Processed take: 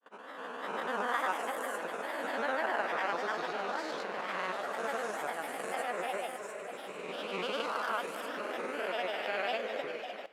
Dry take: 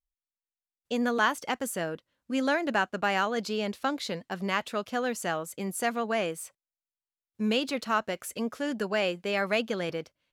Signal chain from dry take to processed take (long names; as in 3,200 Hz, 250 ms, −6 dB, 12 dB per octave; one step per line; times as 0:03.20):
peak hold with a rise ahead of every peak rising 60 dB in 2.90 s
noise gate with hold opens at −28 dBFS
high-pass filter 440 Hz 12 dB per octave
high-shelf EQ 2,300 Hz −11 dB
feedback delay with all-pass diffusion 508 ms, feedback 54%, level −8 dB
granular cloud, pitch spread up and down by 3 semitones
four-comb reverb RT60 2.5 s, combs from 29 ms, DRR 17 dB
level −6.5 dB